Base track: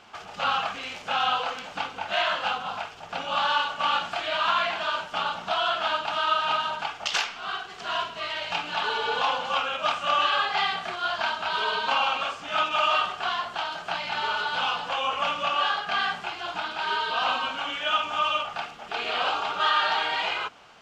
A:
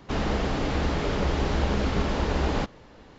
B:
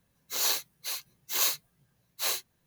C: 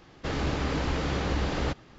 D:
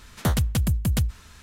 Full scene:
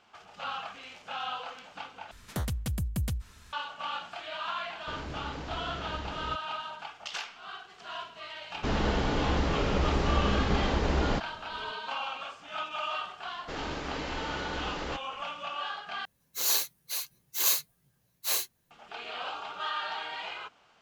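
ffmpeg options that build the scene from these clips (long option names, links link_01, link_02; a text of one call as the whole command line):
ffmpeg -i bed.wav -i cue0.wav -i cue1.wav -i cue2.wav -i cue3.wav -filter_complex "[3:a]asplit=2[link_01][link_02];[0:a]volume=-11dB[link_03];[4:a]alimiter=limit=-17.5dB:level=0:latency=1:release=214[link_04];[link_02]equalizer=frequency=95:width=0.61:gain=-10.5[link_05];[2:a]equalizer=frequency=15000:width_type=o:width=1.6:gain=4.5[link_06];[link_03]asplit=3[link_07][link_08][link_09];[link_07]atrim=end=2.114[link_10];[link_04]atrim=end=1.42,asetpts=PTS-STARTPTS,volume=-5.5dB[link_11];[link_08]atrim=start=3.526:end=16.054[link_12];[link_06]atrim=end=2.66,asetpts=PTS-STARTPTS,volume=-2dB[link_13];[link_09]atrim=start=18.706[link_14];[link_01]atrim=end=1.98,asetpts=PTS-STARTPTS,volume=-11.5dB,afade=type=in:duration=0.004:curve=hsin,afade=type=out:start_time=1.976:duration=0.004:curve=hsin,adelay=4630[link_15];[1:a]atrim=end=3.18,asetpts=PTS-STARTPTS,volume=-2dB,afade=type=in:duration=0.004:curve=hsin,afade=type=out:start_time=3.176:duration=0.004:curve=hsin,adelay=8540[link_16];[link_05]atrim=end=1.98,asetpts=PTS-STARTPTS,volume=-4.5dB,afade=type=in:duration=0.004:curve=hsin,afade=type=out:start_time=1.976:duration=0.004:curve=hsin,adelay=13240[link_17];[link_10][link_11]acrossfade=duration=0.004:curve1=hsin:curve2=hsin[link_18];[link_18][link_12]acrossfade=duration=0.004:curve1=hsin:curve2=hsin[link_19];[link_19][link_13]acrossfade=duration=0.004:curve1=hsin:curve2=hsin[link_20];[link_20][link_14]acrossfade=duration=0.004:curve1=hsin:curve2=hsin[link_21];[link_21][link_15][link_16][link_17]amix=inputs=4:normalize=0" out.wav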